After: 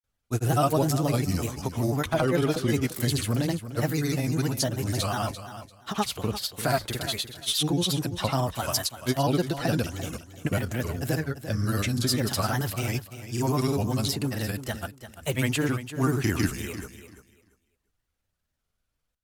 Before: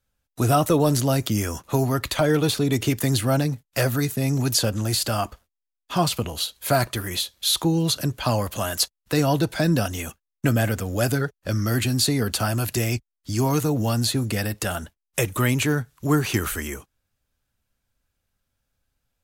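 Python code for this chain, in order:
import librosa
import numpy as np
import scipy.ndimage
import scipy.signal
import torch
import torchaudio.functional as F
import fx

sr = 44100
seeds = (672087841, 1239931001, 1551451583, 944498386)

y = fx.granulator(x, sr, seeds[0], grain_ms=100.0, per_s=20.0, spray_ms=100.0, spread_st=3)
y = fx.echo_feedback(y, sr, ms=343, feedback_pct=20, wet_db=-12)
y = y * 10.0 ** (-3.0 / 20.0)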